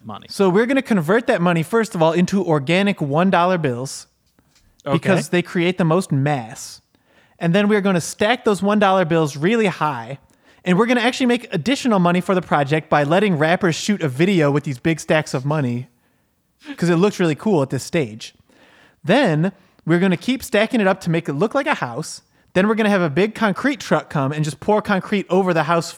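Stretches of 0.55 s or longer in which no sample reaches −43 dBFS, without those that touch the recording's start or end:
0:15.85–0:16.62

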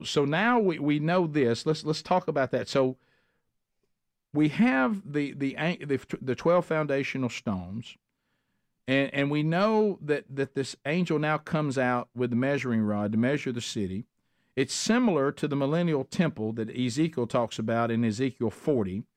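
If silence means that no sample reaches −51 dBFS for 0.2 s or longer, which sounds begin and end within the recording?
0:04.34–0:07.94
0:08.88–0:14.03

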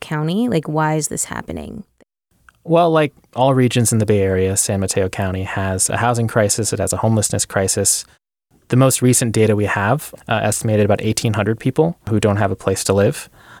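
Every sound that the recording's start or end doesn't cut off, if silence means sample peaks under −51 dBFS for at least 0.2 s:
0:02.31–0:08.17

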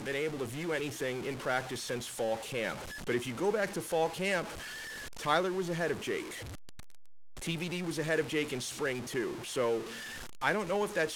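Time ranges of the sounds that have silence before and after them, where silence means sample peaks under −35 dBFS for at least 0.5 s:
0:05.23–0:06.22
0:07.43–0:09.81

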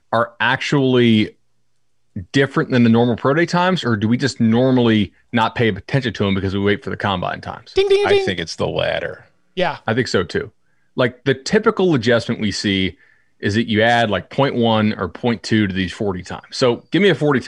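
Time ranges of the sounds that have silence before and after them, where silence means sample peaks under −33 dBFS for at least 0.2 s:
0:02.16–0:05.07
0:05.33–0:09.18
0:09.57–0:10.48
0:10.97–0:12.91

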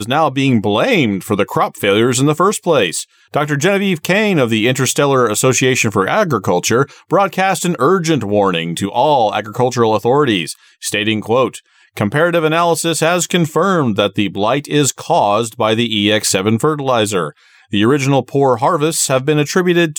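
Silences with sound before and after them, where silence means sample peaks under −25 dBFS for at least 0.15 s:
0:03.03–0:03.34
0:06.84–0:07.11
0:10.55–0:10.83
0:11.58–0:11.97
0:17.30–0:17.73

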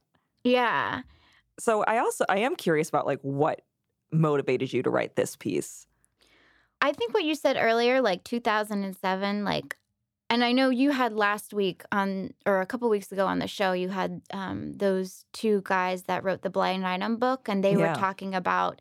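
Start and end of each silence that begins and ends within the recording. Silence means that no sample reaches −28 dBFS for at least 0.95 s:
0:05.64–0:06.82

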